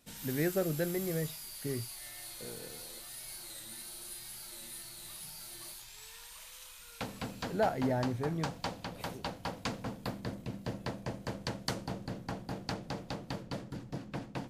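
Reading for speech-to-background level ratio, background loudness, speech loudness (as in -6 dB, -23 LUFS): 7.0 dB, -42.0 LUFS, -35.0 LUFS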